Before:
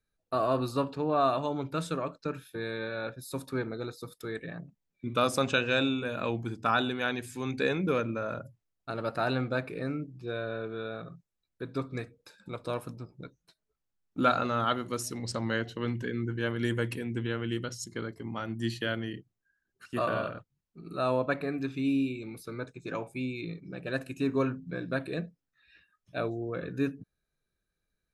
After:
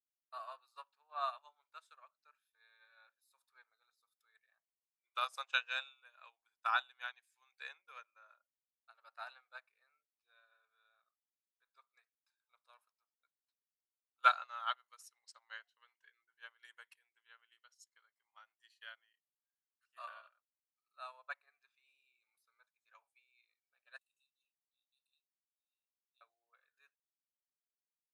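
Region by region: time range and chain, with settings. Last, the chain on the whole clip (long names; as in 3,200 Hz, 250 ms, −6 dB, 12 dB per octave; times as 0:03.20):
0:23.98–0:26.21: Chebyshev high-pass with heavy ripple 2,600 Hz, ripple 9 dB + double-tracking delay 29 ms −12 dB
whole clip: inverse Chebyshev high-pass filter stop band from 260 Hz, stop band 60 dB; expander for the loud parts 2.5 to 1, over −44 dBFS; level +1 dB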